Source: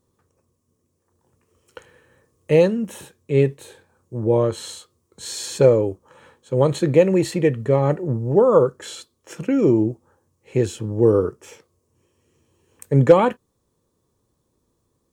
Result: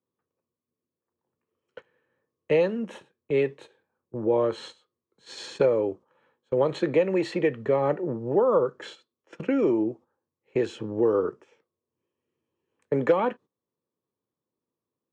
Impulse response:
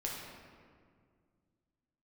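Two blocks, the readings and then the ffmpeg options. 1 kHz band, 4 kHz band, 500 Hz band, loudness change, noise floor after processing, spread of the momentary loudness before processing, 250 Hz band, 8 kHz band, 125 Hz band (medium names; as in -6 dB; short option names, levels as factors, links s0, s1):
-5.0 dB, -7.0 dB, -6.0 dB, -6.5 dB, under -85 dBFS, 16 LU, -7.0 dB, under -15 dB, -15.0 dB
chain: -filter_complex "[0:a]highpass=170,lowpass=3200,agate=range=0.158:threshold=0.0112:ratio=16:detection=peak,acrossover=split=280|690[s0][s1][s2];[s0]acompressor=threshold=0.0158:ratio=4[s3];[s1]acompressor=threshold=0.0708:ratio=4[s4];[s2]acompressor=threshold=0.0447:ratio=4[s5];[s3][s4][s5]amix=inputs=3:normalize=0"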